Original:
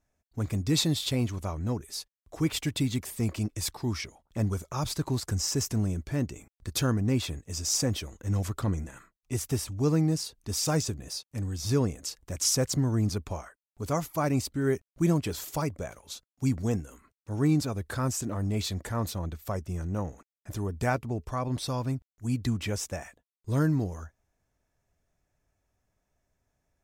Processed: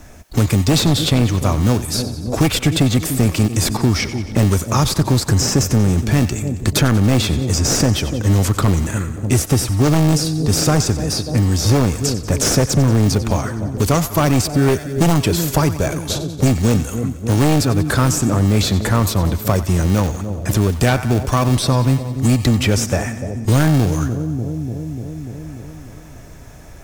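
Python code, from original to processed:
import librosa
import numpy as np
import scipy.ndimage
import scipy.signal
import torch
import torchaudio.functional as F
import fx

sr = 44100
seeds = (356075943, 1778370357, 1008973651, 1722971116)

p1 = fx.sample_hold(x, sr, seeds[0], rate_hz=1000.0, jitter_pct=0)
p2 = x + (p1 * 10.0 ** (-11.0 / 20.0))
p3 = fx.echo_split(p2, sr, split_hz=700.0, low_ms=295, high_ms=91, feedback_pct=52, wet_db=-15.0)
p4 = fx.fold_sine(p3, sr, drive_db=8, ceiling_db=-11.5)
p5 = fx.band_squash(p4, sr, depth_pct=70)
y = p5 * 10.0 ** (2.5 / 20.0)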